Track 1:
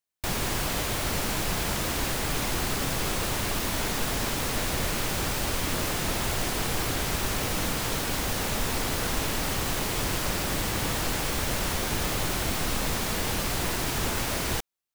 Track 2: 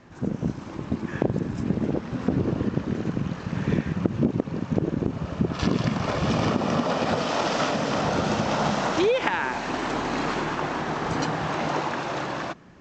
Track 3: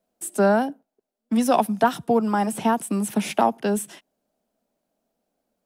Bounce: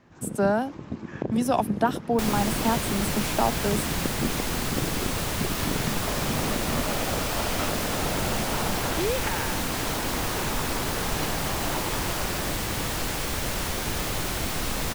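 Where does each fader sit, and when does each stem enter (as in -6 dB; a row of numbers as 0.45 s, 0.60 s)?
-0.5 dB, -6.5 dB, -4.5 dB; 1.95 s, 0.00 s, 0.00 s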